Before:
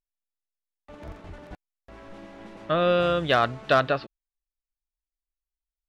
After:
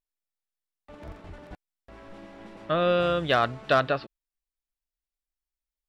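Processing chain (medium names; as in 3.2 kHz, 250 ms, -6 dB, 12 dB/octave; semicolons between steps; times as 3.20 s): band-stop 6.4 kHz, Q 21; trim -1.5 dB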